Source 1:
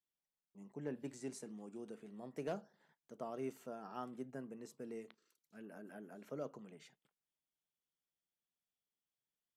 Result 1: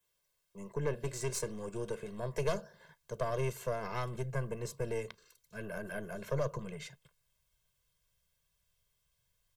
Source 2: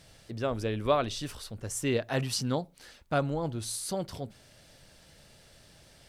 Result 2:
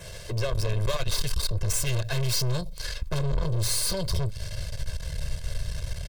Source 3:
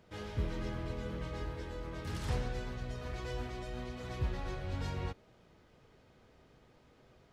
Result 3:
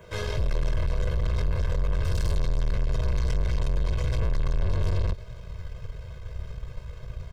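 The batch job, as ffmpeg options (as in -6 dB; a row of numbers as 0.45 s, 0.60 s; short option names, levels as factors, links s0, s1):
-filter_complex "[0:a]acrossover=split=120|3000[s0][s1][s2];[s1]acompressor=threshold=0.00631:ratio=2.5[s3];[s0][s3][s2]amix=inputs=3:normalize=0,asubboost=boost=9:cutoff=99,apsyclip=5.96,adynamicequalizer=threshold=0.00708:dfrequency=4600:dqfactor=2.8:tfrequency=4600:tqfactor=2.8:attack=5:release=100:ratio=0.375:range=3:mode=boostabove:tftype=bell,aeval=exprs='(tanh(25.1*val(0)+0.65)-tanh(0.65))/25.1':c=same,aecho=1:1:1.9:0.88"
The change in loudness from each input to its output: +9.5 LU, +2.5 LU, +11.5 LU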